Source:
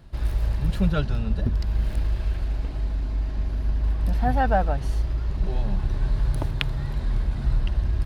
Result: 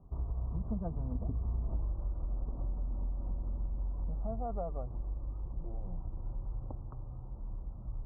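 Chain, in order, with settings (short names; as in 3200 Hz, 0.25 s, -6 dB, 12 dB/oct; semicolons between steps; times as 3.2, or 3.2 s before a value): Doppler pass-by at 1.79, 41 m/s, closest 7.1 m; steep low-pass 1200 Hz 72 dB/oct; compressor 10:1, threshold -44 dBFS, peak gain reduction 24 dB; gain +12.5 dB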